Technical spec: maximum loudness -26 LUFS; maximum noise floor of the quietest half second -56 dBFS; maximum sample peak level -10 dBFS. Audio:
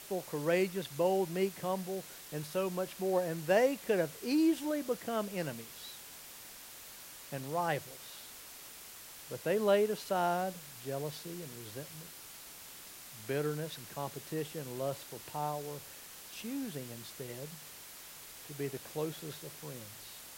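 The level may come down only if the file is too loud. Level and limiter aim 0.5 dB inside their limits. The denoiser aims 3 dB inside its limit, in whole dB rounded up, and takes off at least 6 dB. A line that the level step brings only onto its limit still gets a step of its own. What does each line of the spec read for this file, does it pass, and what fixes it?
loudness -36.0 LUFS: pass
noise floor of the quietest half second -51 dBFS: fail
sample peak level -16.0 dBFS: pass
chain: noise reduction 8 dB, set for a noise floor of -51 dBFS

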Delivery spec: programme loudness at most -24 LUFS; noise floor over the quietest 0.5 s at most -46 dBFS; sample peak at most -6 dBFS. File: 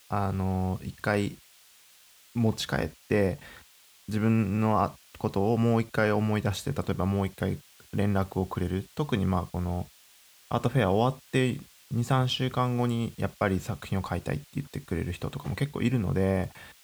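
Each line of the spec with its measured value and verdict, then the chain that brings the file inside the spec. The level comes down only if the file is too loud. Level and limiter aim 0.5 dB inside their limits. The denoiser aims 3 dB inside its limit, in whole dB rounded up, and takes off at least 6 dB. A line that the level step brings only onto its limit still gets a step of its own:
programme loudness -29.0 LUFS: pass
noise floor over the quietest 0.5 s -57 dBFS: pass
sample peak -11.0 dBFS: pass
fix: none needed

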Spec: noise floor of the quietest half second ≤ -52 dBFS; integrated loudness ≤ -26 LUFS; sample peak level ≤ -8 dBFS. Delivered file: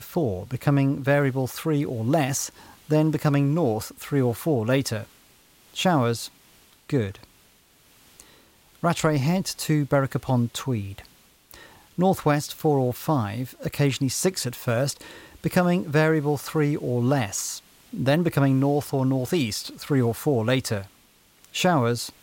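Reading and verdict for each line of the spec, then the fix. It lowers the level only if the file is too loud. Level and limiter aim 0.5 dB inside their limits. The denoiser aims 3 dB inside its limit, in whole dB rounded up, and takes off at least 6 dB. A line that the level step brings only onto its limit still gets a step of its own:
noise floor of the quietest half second -58 dBFS: pass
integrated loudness -24.0 LUFS: fail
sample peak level -9.5 dBFS: pass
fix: trim -2.5 dB

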